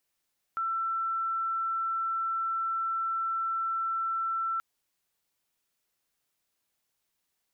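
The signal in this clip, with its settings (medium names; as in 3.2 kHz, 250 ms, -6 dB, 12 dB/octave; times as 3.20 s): tone sine 1.34 kHz -27.5 dBFS 4.03 s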